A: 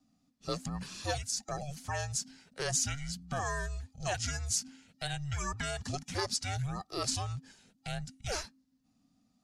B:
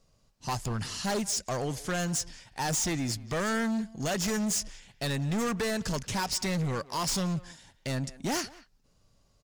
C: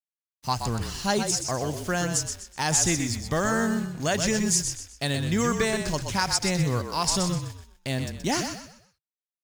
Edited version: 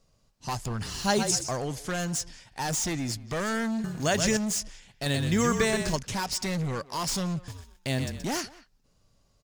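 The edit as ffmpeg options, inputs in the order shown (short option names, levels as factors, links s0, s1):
-filter_complex "[2:a]asplit=4[s0][s1][s2][s3];[1:a]asplit=5[s4][s5][s6][s7][s8];[s4]atrim=end=1.01[s9];[s0]atrim=start=0.77:end=1.61[s10];[s5]atrim=start=1.37:end=3.842[s11];[s1]atrim=start=3.838:end=4.372[s12];[s6]atrim=start=4.368:end=5.062[s13];[s2]atrim=start=5.058:end=5.962[s14];[s7]atrim=start=5.958:end=7.482[s15];[s3]atrim=start=7.478:end=8.252[s16];[s8]atrim=start=8.248[s17];[s9][s10]acrossfade=d=0.24:c1=tri:c2=tri[s18];[s18][s11]acrossfade=d=0.24:c1=tri:c2=tri[s19];[s19][s12]acrossfade=d=0.004:c1=hsin:c2=hsin[s20];[s20][s13]acrossfade=d=0.004:c1=hsin:c2=hsin[s21];[s21][s14]acrossfade=d=0.004:c1=hsin:c2=hsin[s22];[s22][s15]acrossfade=d=0.004:c1=hsin:c2=hsin[s23];[s23][s16]acrossfade=d=0.004:c1=hsin:c2=hsin[s24];[s24][s17]acrossfade=d=0.004:c1=hsin:c2=hsin"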